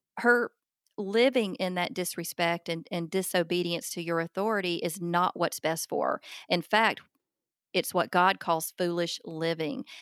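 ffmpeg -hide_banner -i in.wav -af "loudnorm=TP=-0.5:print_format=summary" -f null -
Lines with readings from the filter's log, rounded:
Input Integrated:    -28.7 LUFS
Input True Peak:      -9.6 dBTP
Input LRA:             1.5 LU
Input Threshold:     -39.0 LUFS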